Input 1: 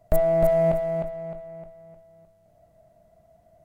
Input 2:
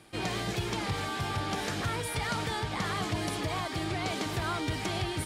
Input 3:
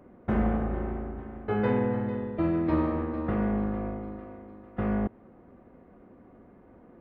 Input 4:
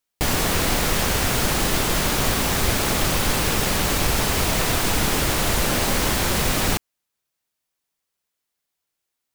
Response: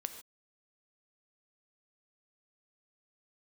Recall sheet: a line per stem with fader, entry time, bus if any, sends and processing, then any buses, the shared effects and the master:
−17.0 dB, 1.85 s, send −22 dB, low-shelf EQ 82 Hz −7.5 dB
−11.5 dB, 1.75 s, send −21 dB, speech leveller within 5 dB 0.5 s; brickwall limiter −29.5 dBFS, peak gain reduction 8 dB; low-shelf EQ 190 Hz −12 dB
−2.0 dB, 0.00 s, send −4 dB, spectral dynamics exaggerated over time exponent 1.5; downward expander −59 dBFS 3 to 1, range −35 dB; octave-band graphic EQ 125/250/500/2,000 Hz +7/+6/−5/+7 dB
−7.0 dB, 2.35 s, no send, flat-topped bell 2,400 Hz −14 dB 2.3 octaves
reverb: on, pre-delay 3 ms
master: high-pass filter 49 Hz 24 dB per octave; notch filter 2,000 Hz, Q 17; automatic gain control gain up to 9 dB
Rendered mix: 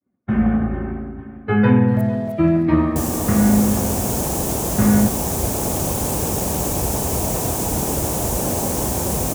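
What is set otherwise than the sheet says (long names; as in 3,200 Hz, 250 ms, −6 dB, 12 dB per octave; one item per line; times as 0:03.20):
stem 2 −11.5 dB → −23.0 dB
stem 4: entry 2.35 s → 2.75 s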